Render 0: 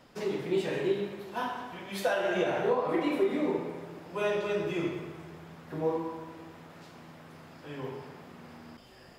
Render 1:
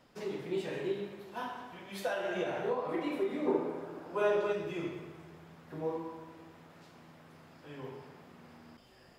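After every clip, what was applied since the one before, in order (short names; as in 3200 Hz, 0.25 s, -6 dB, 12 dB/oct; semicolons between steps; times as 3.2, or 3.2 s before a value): spectral gain 3.46–4.52, 230–1700 Hz +7 dB; gain -6 dB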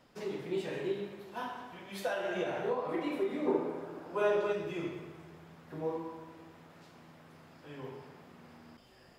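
nothing audible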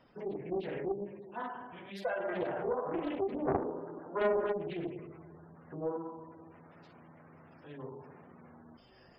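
spectral gate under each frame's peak -20 dB strong; Doppler distortion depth 0.62 ms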